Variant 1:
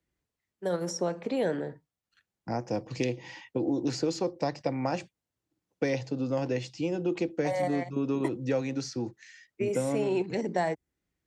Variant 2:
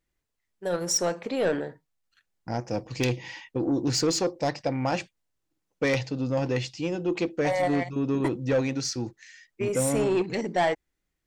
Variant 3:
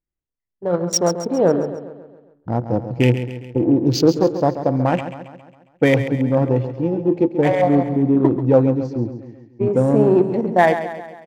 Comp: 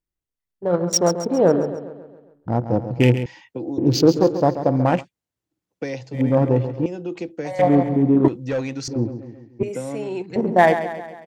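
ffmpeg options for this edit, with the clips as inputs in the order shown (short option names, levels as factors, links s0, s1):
-filter_complex "[0:a]asplit=4[s0][s1][s2][s3];[2:a]asplit=6[s4][s5][s6][s7][s8][s9];[s4]atrim=end=3.262[s10];[s0]atrim=start=3.258:end=3.782[s11];[s5]atrim=start=3.778:end=5.05[s12];[s1]atrim=start=4.95:end=6.21[s13];[s6]atrim=start=6.11:end=6.862[s14];[s2]atrim=start=6.858:end=7.592[s15];[s7]atrim=start=7.588:end=8.282[s16];[1:a]atrim=start=8.278:end=8.882[s17];[s8]atrim=start=8.878:end=9.632[s18];[s3]atrim=start=9.628:end=10.362[s19];[s9]atrim=start=10.358[s20];[s10][s11]acrossfade=d=0.004:c1=hsin:c2=hsin[s21];[s21][s12]acrossfade=d=0.004:c1=hsin:c2=hsin[s22];[s22][s13]acrossfade=d=0.1:c1=tri:c2=tri[s23];[s23][s14]acrossfade=d=0.1:c1=tri:c2=tri[s24];[s24][s15]acrossfade=d=0.004:c1=hsin:c2=hsin[s25];[s25][s16]acrossfade=d=0.004:c1=hsin:c2=hsin[s26];[s26][s17]acrossfade=d=0.004:c1=hsin:c2=hsin[s27];[s27][s18]acrossfade=d=0.004:c1=hsin:c2=hsin[s28];[s28][s19]acrossfade=d=0.004:c1=hsin:c2=hsin[s29];[s29][s20]acrossfade=d=0.004:c1=hsin:c2=hsin"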